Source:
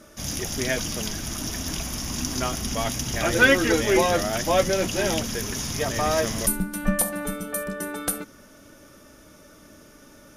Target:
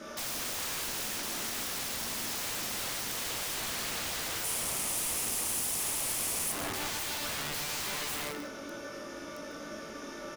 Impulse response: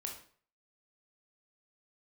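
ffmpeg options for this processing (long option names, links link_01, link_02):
-filter_complex "[0:a]asoftclip=type=hard:threshold=-19dB,asplit=2[link_01][link_02];[link_02]adelay=18,volume=-5dB[link_03];[link_01][link_03]amix=inputs=2:normalize=0[link_04];[1:a]atrim=start_sample=2205,afade=type=out:start_time=0.31:duration=0.01,atrim=end_sample=14112,asetrate=41013,aresample=44100[link_05];[link_04][link_05]afir=irnorm=-1:irlink=0,acompressor=threshold=-36dB:ratio=5,acrossover=split=200 6300:gain=0.2 1 0.178[link_06][link_07][link_08];[link_06][link_07][link_08]amix=inputs=3:normalize=0,aeval=exprs='(mod(94.4*val(0)+1,2)-1)/94.4':channel_layout=same,asettb=1/sr,asplit=3[link_09][link_10][link_11];[link_09]atrim=end=4.444[link_12];[link_10]atrim=start=4.44:end=6.52,asetpts=PTS-STARTPTS,afade=type=in:duration=0.004:curve=qsin,afade=type=out:start_time=2.076:duration=0.004:curve=qsin,equalizer=frequency=1600:width_type=o:width=0.67:gain=-5,equalizer=frequency=4000:width_type=o:width=0.67:gain=-4,equalizer=frequency=10000:width_type=o:width=0.67:gain=10[link_13];[link_11]atrim=start=6.516[link_14];[link_12][link_13]acrossfade=duration=0.004:curve1=hsin:curve2=qsin[link_15];[link_15][link_14]acrossfade=duration=0.004:curve1=qsin:curve2=hsin,asplit=2[link_16][link_17];[link_17]adelay=151.6,volume=-10dB,highshelf=frequency=4000:gain=-3.41[link_18];[link_16][link_18]amix=inputs=2:normalize=0,volume=8.5dB"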